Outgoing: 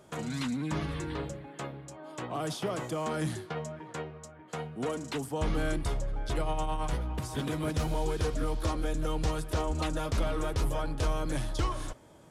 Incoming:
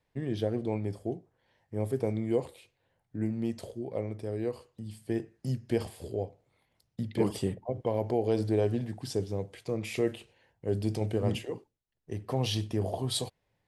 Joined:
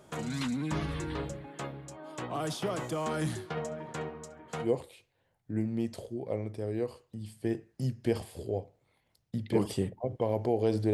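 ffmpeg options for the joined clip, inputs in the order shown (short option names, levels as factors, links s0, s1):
-filter_complex "[0:a]asettb=1/sr,asplit=3[s0][s1][s2];[s0]atrim=end=3.454[s3];[s1]atrim=start=3.45:end=4.7,asetpts=PTS-STARTPTS,afade=t=in:d=0.004:c=qsin,afade=t=out:st=1.246:d=0.004:c=qsin,asplit=2[s4][s5];[s5]adelay=69,lowpass=f=1100:p=1,volume=0.596,asplit=2[s6][s7];[s7]adelay=69,lowpass=f=1100:p=1,volume=0.54,asplit=2[s8][s9];[s9]adelay=69,lowpass=f=1100:p=1,volume=0.54,asplit=2[s10][s11];[s11]adelay=69,lowpass=f=1100:p=1,volume=0.54,asplit=2[s12][s13];[s13]adelay=69,lowpass=f=1100:p=1,volume=0.54,asplit=2[s14][s15];[s15]adelay=69,lowpass=f=1100:p=1,volume=0.54,asplit=2[s16][s17];[s17]adelay=69,lowpass=f=1100:p=1,volume=0.54[s18];[s4][s6][s8][s10][s12][s14][s16][s18]amix=inputs=8:normalize=0,atrim=end_sample=55125[s19];[s2]atrim=start=4.696[s20];[s3][s19]acrossfade=d=0.004:c1=hsin:c2=qsin[s21];[s21][s20]acrossfade=d=0.004:c1=qsin:c2=hsin,apad=whole_dur=10.93,atrim=end=10.93,atrim=end=4.7,asetpts=PTS-STARTPTS[s22];[1:a]atrim=start=2.25:end=8.58,asetpts=PTS-STARTPTS[s23];[s22][s23]acrossfade=d=0.1:c1=tri:c2=tri"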